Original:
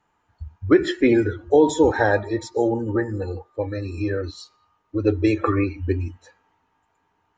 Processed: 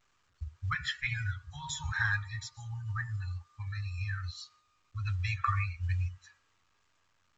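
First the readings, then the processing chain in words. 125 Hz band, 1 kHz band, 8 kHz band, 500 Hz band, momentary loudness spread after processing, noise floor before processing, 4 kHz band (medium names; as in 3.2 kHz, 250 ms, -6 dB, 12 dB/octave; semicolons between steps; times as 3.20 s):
-5.5 dB, -11.5 dB, no reading, under -40 dB, 12 LU, -70 dBFS, -4.5 dB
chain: Chebyshev band-stop 140–1100 Hz, order 4; gate -58 dBFS, range -17 dB; trim -4.5 dB; A-law 128 kbps 16 kHz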